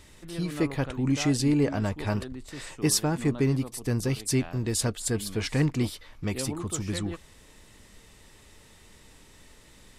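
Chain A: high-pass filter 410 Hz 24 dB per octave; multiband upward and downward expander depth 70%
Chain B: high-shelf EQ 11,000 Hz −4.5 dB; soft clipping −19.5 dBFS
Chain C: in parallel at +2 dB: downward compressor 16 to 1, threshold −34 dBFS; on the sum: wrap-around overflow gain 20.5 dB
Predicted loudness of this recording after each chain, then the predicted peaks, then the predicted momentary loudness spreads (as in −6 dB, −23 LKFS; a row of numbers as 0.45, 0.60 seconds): −29.0, −30.0, −27.0 LKFS; −5.5, −19.5, −20.5 dBFS; 17, 8, 22 LU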